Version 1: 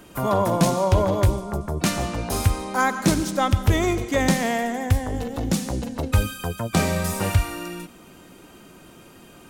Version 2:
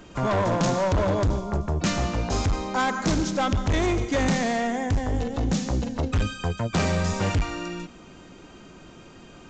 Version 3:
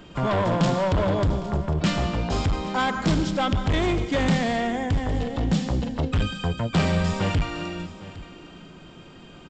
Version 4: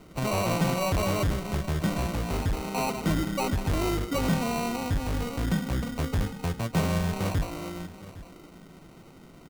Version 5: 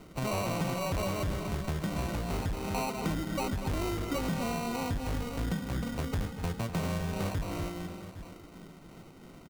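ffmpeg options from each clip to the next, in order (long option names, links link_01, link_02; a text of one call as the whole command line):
ffmpeg -i in.wav -af "lowshelf=frequency=78:gain=6.5,aresample=16000,volume=19dB,asoftclip=hard,volume=-19dB,aresample=44100" out.wav
ffmpeg -i in.wav -af "equalizer=frequency=160:width_type=o:width=0.33:gain=6,equalizer=frequency=3150:width_type=o:width=0.33:gain=5,equalizer=frequency=6300:width_type=o:width=0.33:gain=-9,aecho=1:1:809:0.141" out.wav
ffmpeg -i in.wav -af "lowpass=2500,bandreject=frequency=1600:width=12,acrusher=samples=26:mix=1:aa=0.000001,volume=-4dB" out.wav
ffmpeg -i in.wav -filter_complex "[0:a]asplit=2[link_01][link_02];[link_02]adelay=244.9,volume=-10dB,highshelf=frequency=4000:gain=-5.51[link_03];[link_01][link_03]amix=inputs=2:normalize=0,tremolo=f=2.9:d=0.3,acompressor=threshold=-29dB:ratio=6" out.wav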